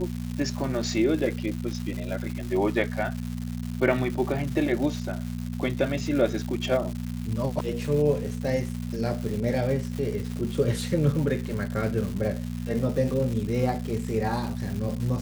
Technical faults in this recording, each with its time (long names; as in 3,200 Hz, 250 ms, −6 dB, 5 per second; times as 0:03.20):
surface crackle 330 per second −32 dBFS
mains hum 60 Hz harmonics 4 −32 dBFS